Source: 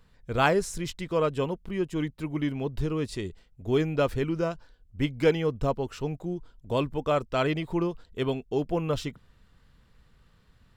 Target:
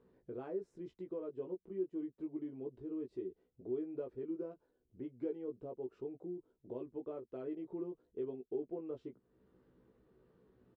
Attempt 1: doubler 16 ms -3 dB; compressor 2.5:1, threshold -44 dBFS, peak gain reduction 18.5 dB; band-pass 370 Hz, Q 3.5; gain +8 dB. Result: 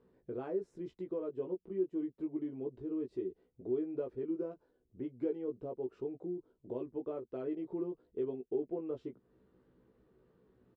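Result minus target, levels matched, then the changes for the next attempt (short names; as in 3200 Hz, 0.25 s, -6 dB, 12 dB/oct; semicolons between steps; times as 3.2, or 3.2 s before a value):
compressor: peak gain reduction -4 dB
change: compressor 2.5:1, threshold -51 dBFS, peak gain reduction 22.5 dB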